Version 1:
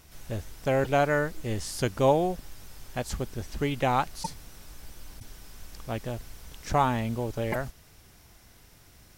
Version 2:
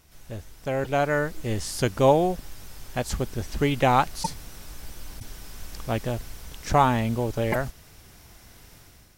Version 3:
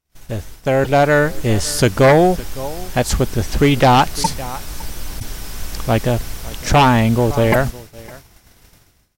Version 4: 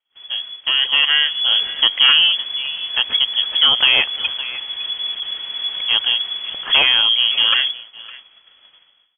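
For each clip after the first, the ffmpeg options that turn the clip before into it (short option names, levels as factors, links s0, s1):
-af "dynaudnorm=f=730:g=3:m=3.16,volume=0.668"
-af "aecho=1:1:559:0.0891,aeval=exprs='0.531*sin(PI/2*2.51*val(0)/0.531)':c=same,agate=range=0.0224:threshold=0.0398:ratio=3:detection=peak"
-filter_complex "[0:a]acrossover=split=800|1200[s0][s1][s2];[s1]aeval=exprs='(mod(25.1*val(0)+1,2)-1)/25.1':c=same[s3];[s0][s3][s2]amix=inputs=3:normalize=0,lowpass=f=2900:t=q:w=0.5098,lowpass=f=2900:t=q:w=0.6013,lowpass=f=2900:t=q:w=0.9,lowpass=f=2900:t=q:w=2.563,afreqshift=-3400,volume=0.891"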